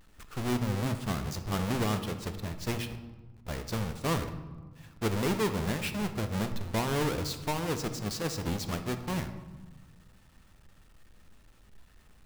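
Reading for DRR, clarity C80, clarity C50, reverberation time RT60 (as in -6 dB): 8.0 dB, 12.5 dB, 10.0 dB, 1.3 s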